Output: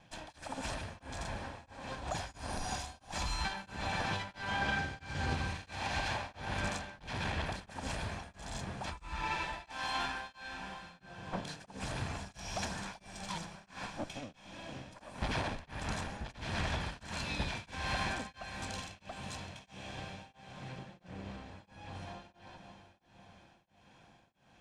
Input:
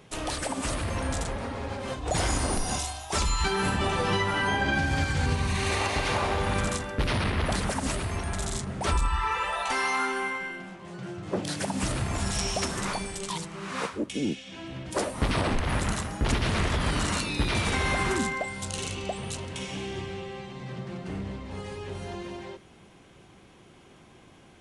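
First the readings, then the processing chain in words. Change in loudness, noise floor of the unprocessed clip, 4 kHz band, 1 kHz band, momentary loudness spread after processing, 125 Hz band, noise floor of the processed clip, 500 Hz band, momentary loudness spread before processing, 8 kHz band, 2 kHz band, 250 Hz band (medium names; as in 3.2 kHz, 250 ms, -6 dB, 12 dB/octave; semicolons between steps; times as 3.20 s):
-10.5 dB, -54 dBFS, -9.0 dB, -9.0 dB, 14 LU, -11.5 dB, -66 dBFS, -13.0 dB, 12 LU, -13.5 dB, -9.0 dB, -12.5 dB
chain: comb filter that takes the minimum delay 1.2 ms; low-pass 6.3 kHz 12 dB/octave; bass shelf 100 Hz -6 dB; echo that smears into a reverb 531 ms, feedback 58%, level -11 dB; tremolo of two beating tones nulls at 1.5 Hz; trim -5.5 dB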